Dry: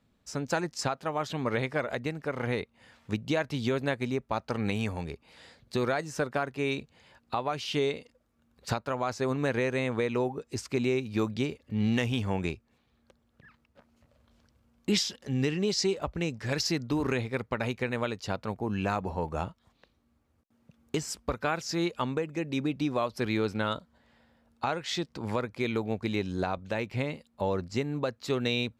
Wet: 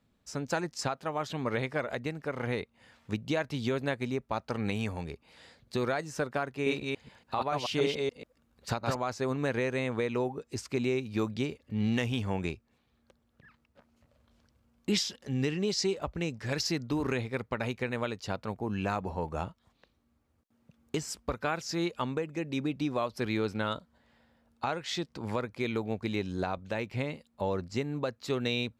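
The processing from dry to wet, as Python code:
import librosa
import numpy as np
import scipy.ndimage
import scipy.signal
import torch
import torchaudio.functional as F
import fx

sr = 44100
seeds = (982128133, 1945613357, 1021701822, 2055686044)

y = fx.reverse_delay(x, sr, ms=143, wet_db=-1, at=(6.52, 8.96))
y = y * librosa.db_to_amplitude(-2.0)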